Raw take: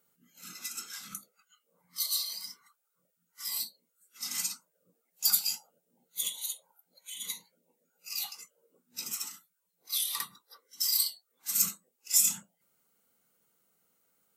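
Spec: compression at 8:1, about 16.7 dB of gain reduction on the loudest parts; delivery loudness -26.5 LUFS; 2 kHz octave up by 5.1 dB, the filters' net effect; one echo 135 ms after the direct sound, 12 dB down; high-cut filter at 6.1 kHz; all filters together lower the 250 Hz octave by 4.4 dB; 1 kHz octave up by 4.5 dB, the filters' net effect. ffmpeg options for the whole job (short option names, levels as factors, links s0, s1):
-af "lowpass=6100,equalizer=f=250:t=o:g=-6.5,equalizer=f=1000:t=o:g=4,equalizer=f=2000:t=o:g=5.5,acompressor=threshold=0.00631:ratio=8,aecho=1:1:135:0.251,volume=10.6"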